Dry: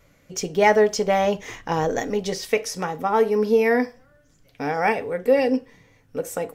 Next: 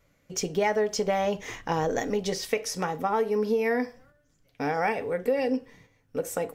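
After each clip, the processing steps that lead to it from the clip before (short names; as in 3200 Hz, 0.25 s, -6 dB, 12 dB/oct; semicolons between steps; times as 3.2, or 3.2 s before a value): gate -52 dBFS, range -7 dB; compressor 4:1, threshold -21 dBFS, peak gain reduction 8.5 dB; gain -1.5 dB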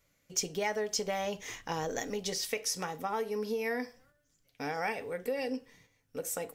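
high shelf 2600 Hz +11 dB; gain -9 dB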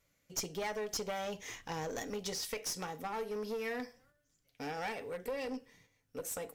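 one-sided clip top -34 dBFS; gain -3 dB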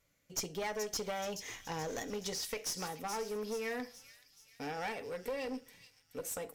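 thin delay 0.427 s, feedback 52%, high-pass 3900 Hz, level -7 dB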